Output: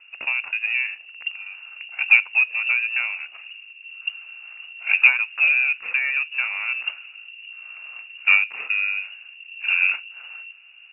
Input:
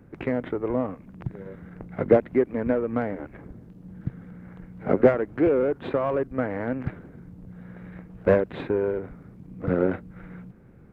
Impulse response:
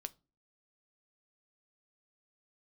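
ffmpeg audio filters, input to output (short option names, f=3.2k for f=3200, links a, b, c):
-filter_complex "[0:a]asplit=2[a][b];[b]highshelf=f=2.3k:g=-9[c];[1:a]atrim=start_sample=2205[d];[c][d]afir=irnorm=-1:irlink=0,volume=9.5dB[e];[a][e]amix=inputs=2:normalize=0,lowpass=f=2.5k:t=q:w=0.5098,lowpass=f=2.5k:t=q:w=0.6013,lowpass=f=2.5k:t=q:w=0.9,lowpass=f=2.5k:t=q:w=2.563,afreqshift=-2900,volume=-7dB"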